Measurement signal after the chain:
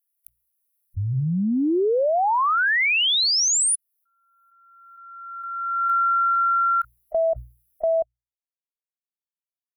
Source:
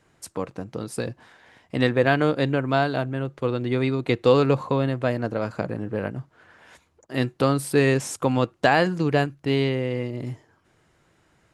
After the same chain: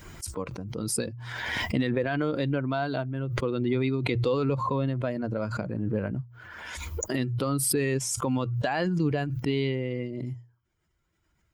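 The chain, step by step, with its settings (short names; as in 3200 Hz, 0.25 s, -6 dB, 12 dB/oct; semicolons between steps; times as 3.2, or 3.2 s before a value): per-bin expansion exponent 1.5; recorder AGC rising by 5.8 dB/s; notches 60/120 Hz; limiter -16 dBFS; backwards sustainer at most 28 dB/s; gain -1 dB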